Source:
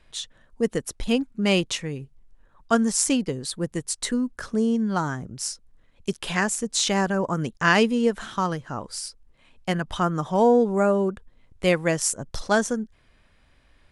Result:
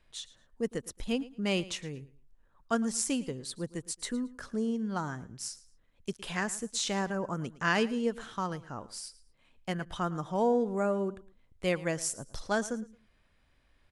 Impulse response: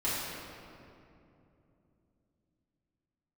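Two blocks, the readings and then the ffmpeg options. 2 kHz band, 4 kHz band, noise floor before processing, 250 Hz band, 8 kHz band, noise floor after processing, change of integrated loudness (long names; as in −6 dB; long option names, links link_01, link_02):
−9.0 dB, −9.0 dB, −60 dBFS, −9.0 dB, −9.0 dB, −68 dBFS, −9.0 dB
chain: -af "aecho=1:1:111|222:0.119|0.0285,volume=-9dB"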